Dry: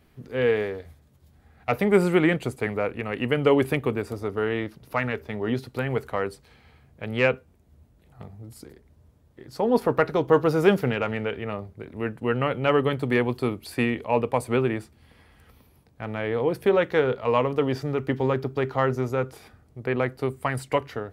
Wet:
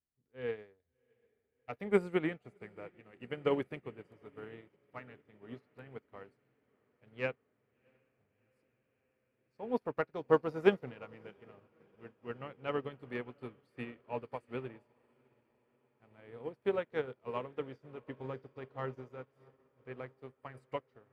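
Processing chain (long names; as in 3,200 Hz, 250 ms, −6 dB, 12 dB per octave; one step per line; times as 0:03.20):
high-shelf EQ 9,500 Hz −10.5 dB
on a send: feedback delay with all-pass diffusion 692 ms, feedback 76%, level −12.5 dB
on the sum: expander for the loud parts 2.5 to 1, over −35 dBFS
level −6 dB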